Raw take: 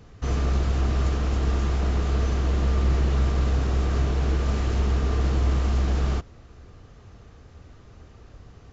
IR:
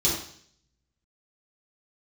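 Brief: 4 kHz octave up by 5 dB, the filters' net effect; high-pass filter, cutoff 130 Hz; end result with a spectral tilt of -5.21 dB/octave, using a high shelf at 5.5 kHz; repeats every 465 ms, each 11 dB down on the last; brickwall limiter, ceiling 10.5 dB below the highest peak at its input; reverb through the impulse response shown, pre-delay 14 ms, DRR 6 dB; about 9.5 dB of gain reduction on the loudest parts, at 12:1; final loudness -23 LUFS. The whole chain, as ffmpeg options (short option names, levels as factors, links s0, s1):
-filter_complex "[0:a]highpass=130,equalizer=f=4000:t=o:g=4,highshelf=f=5500:g=6,acompressor=threshold=0.0178:ratio=12,alimiter=level_in=3.98:limit=0.0631:level=0:latency=1,volume=0.251,aecho=1:1:465|930|1395:0.282|0.0789|0.0221,asplit=2[s0][s1];[1:a]atrim=start_sample=2205,adelay=14[s2];[s1][s2]afir=irnorm=-1:irlink=0,volume=0.133[s3];[s0][s3]amix=inputs=2:normalize=0,volume=10"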